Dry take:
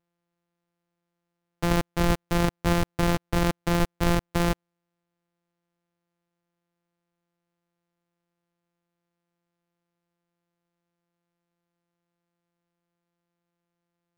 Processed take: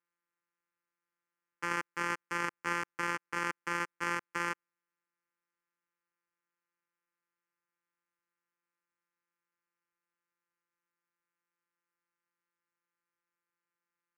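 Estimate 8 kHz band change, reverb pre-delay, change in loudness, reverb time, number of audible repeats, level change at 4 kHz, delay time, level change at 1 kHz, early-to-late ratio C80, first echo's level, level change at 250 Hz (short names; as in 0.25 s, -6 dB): -9.5 dB, none, -9.5 dB, none, none, -12.0 dB, none, -5.0 dB, none, none, -18.5 dB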